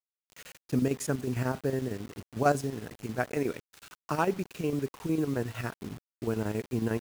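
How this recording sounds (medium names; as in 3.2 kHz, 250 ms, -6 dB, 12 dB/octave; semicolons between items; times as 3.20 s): chopped level 11 Hz, depth 60%, duty 70%; a quantiser's noise floor 8-bit, dither none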